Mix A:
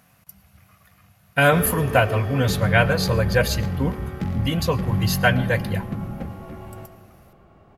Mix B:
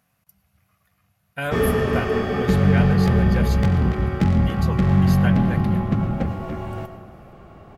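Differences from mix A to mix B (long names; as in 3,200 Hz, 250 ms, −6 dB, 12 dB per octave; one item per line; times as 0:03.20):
speech −11.0 dB
background +8.0 dB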